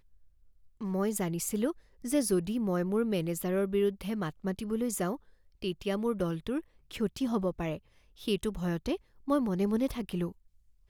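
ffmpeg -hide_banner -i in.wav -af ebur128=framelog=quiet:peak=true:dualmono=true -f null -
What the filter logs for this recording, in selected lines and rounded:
Integrated loudness:
  I:         -29.3 LUFS
  Threshold: -39.4 LUFS
Loudness range:
  LRA:         3.3 LU
  Threshold: -49.5 LUFS
  LRA low:   -31.2 LUFS
  LRA high:  -27.9 LUFS
True peak:
  Peak:      -15.8 dBFS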